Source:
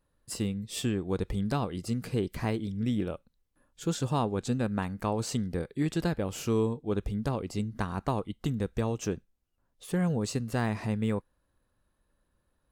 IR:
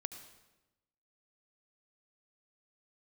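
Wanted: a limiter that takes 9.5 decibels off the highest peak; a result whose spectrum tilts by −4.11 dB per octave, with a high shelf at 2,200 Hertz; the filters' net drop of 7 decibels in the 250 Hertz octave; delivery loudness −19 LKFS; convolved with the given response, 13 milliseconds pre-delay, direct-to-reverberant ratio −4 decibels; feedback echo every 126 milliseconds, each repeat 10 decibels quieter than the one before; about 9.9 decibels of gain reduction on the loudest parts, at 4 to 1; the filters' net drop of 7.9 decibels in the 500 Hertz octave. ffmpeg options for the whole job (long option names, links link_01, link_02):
-filter_complex "[0:a]equalizer=frequency=250:width_type=o:gain=-8,equalizer=frequency=500:width_type=o:gain=-7.5,highshelf=frequency=2200:gain=6,acompressor=threshold=-40dB:ratio=4,alimiter=level_in=10dB:limit=-24dB:level=0:latency=1,volume=-10dB,aecho=1:1:126|252|378|504:0.316|0.101|0.0324|0.0104,asplit=2[link_01][link_02];[1:a]atrim=start_sample=2205,adelay=13[link_03];[link_02][link_03]afir=irnorm=-1:irlink=0,volume=6dB[link_04];[link_01][link_04]amix=inputs=2:normalize=0,volume=20.5dB"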